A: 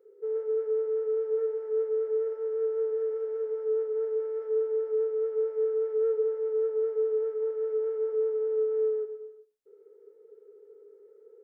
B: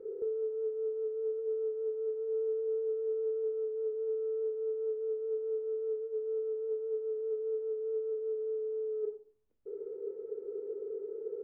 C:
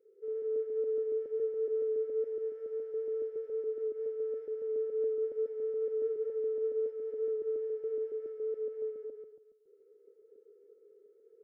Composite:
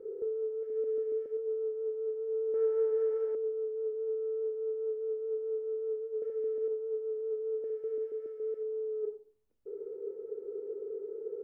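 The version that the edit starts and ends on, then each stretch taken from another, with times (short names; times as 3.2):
B
0.63–1.37 from C
2.54–3.35 from A
6.22–6.68 from C
7.64–8.63 from C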